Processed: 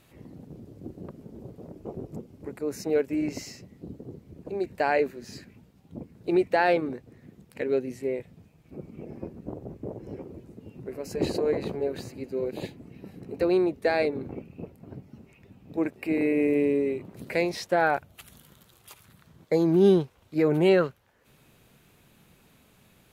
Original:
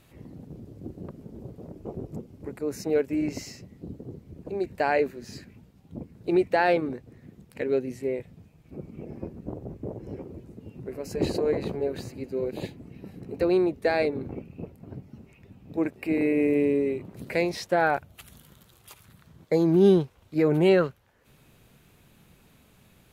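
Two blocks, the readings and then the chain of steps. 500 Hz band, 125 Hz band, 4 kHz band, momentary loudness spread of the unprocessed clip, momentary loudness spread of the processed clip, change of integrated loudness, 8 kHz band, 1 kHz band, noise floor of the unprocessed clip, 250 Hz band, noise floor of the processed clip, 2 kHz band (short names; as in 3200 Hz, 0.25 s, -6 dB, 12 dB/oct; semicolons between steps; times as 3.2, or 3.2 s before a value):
-0.5 dB, -2.0 dB, 0.0 dB, 21 LU, 22 LU, -0.5 dB, n/a, 0.0 dB, -59 dBFS, -1.0 dB, -60 dBFS, 0.0 dB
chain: low shelf 120 Hz -5.5 dB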